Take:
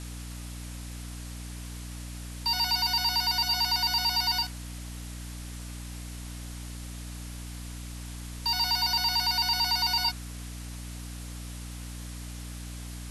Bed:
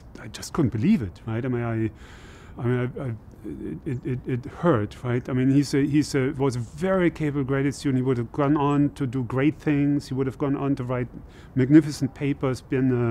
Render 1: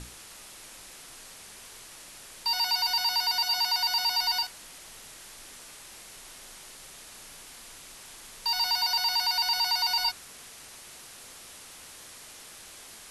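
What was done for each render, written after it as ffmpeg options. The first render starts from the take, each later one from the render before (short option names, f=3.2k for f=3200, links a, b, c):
-af "bandreject=f=60:t=h:w=6,bandreject=f=120:t=h:w=6,bandreject=f=180:t=h:w=6,bandreject=f=240:t=h:w=6,bandreject=f=300:t=h:w=6"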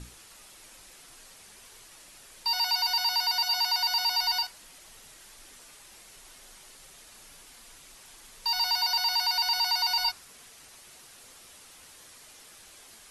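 -af "afftdn=nr=6:nf=-48"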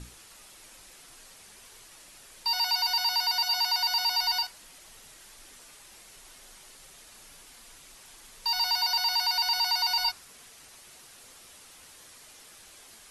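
-af anull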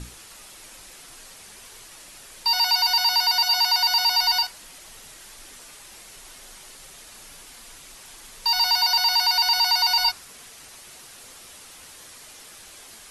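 -af "acontrast=67"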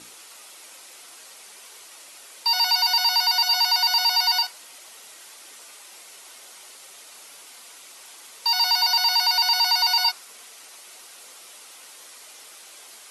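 -af "highpass=400,bandreject=f=1.7k:w=14"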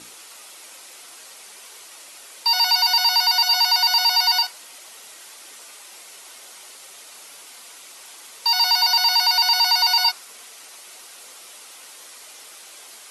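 -af "volume=2.5dB"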